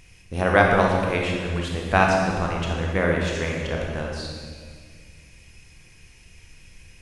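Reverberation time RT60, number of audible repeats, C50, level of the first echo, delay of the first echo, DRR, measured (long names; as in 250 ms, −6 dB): 1.9 s, no echo audible, 0.5 dB, no echo audible, no echo audible, −1.0 dB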